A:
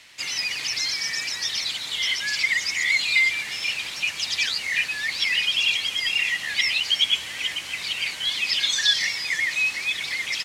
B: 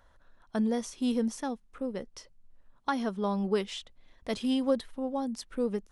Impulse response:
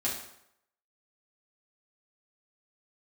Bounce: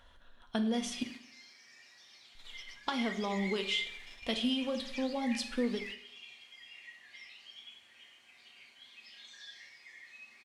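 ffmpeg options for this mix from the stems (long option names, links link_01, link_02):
-filter_complex "[0:a]highpass=frequency=230:poles=1,highshelf=frequency=2400:gain=-9.5,adelay=550,volume=-14dB,asplit=2[link_01][link_02];[link_02]volume=-11dB[link_03];[1:a]equalizer=frequency=3100:width_type=o:width=0.82:gain=13.5,acompressor=threshold=-31dB:ratio=6,volume=2dB,asplit=3[link_04][link_05][link_06];[link_04]atrim=end=1.03,asetpts=PTS-STARTPTS,afade=type=out:start_time=1.026:duration=0.004:curve=hsin[link_07];[link_05]atrim=start=1.03:end=2.35,asetpts=PTS-STARTPTS,volume=0[link_08];[link_06]atrim=start=2.35,asetpts=PTS-STARTPTS,afade=type=in:duration=0.004:curve=hsin[link_09];[link_07][link_08][link_09]concat=n=3:v=0:a=1,asplit=3[link_10][link_11][link_12];[link_11]volume=-8.5dB[link_13];[link_12]apad=whole_len=484679[link_14];[link_01][link_14]sidechaingate=range=-33dB:threshold=-51dB:ratio=16:detection=peak[link_15];[2:a]atrim=start_sample=2205[link_16];[link_03][link_13]amix=inputs=2:normalize=0[link_17];[link_17][link_16]afir=irnorm=-1:irlink=0[link_18];[link_15][link_10][link_18]amix=inputs=3:normalize=0,flanger=delay=2.3:depth=7.9:regen=-88:speed=0.38:shape=triangular"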